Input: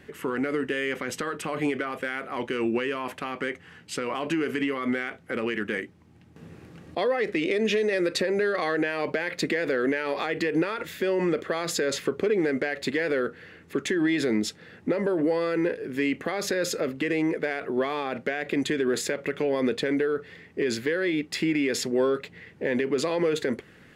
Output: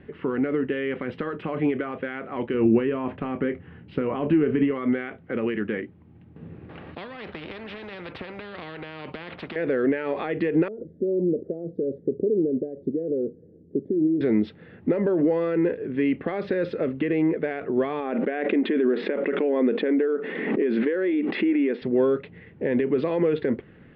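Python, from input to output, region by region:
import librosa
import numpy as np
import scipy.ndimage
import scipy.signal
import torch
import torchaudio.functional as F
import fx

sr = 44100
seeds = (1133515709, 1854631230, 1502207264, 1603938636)

y = fx.chain(x, sr, fx.tilt_eq(slope=-2.0),
    fx.doubler(ms=27.0, db=-12), at=(2.54, 4.71))
y = fx.chain(y, sr, fx.highpass(hz=130.0, slope=6),
    fx.spectral_comp(ratio=4.0), at=(6.69, 9.56))
y = fx.chain(y, sr, fx.cheby2_lowpass(hz=1000.0, order=4, stop_db=40),
    fx.low_shelf(hz=96.0, db=-11.5), at=(10.68, 14.21))
y = fx.chain(y, sr, fx.brickwall_highpass(low_hz=190.0),
    fx.air_absorb(metres=210.0),
    fx.pre_swell(db_per_s=23.0), at=(18.0, 21.82))
y = scipy.signal.sosfilt(scipy.signal.cheby2(4, 40, 6400.0, 'lowpass', fs=sr, output='sos'), y)
y = fx.tilt_shelf(y, sr, db=5.5, hz=720.0)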